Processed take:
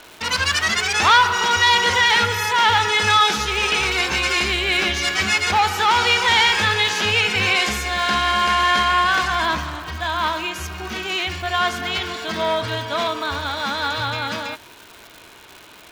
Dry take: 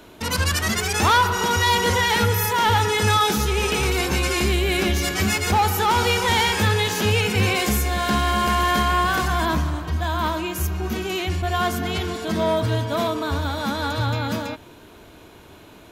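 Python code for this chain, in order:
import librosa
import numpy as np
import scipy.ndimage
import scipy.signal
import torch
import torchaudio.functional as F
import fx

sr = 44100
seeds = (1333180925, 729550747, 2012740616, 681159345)

y = scipy.signal.sosfilt(scipy.signal.bessel(2, 3900.0, 'lowpass', norm='mag', fs=sr, output='sos'), x)
y = fx.tilt_shelf(y, sr, db=-9.0, hz=690.0)
y = fx.dmg_crackle(y, sr, seeds[0], per_s=330.0, level_db=-31.0)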